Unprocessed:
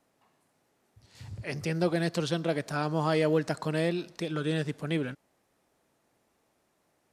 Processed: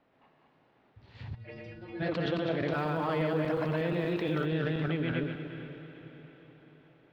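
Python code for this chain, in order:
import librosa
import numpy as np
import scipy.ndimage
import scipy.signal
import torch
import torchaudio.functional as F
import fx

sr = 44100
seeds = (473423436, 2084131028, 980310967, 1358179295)

p1 = fx.reverse_delay_fb(x, sr, ms=119, feedback_pct=44, wet_db=-1.5)
p2 = scipy.signal.sosfilt(scipy.signal.butter(4, 3400.0, 'lowpass', fs=sr, output='sos'), p1)
p3 = fx.over_compress(p2, sr, threshold_db=-32.0, ratio=-0.5)
p4 = p2 + F.gain(torch.from_numpy(p3), 0.0).numpy()
p5 = fx.stiff_resonator(p4, sr, f0_hz=110.0, decay_s=0.54, stiffness=0.008, at=(1.34, 1.99), fade=0.02)
p6 = fx.sample_gate(p5, sr, floor_db=-46.5, at=(2.72, 4.46))
p7 = p6 + fx.echo_diffused(p6, sr, ms=461, feedback_pct=49, wet_db=-12.0, dry=0)
y = F.gain(torch.from_numpy(p7), -6.5).numpy()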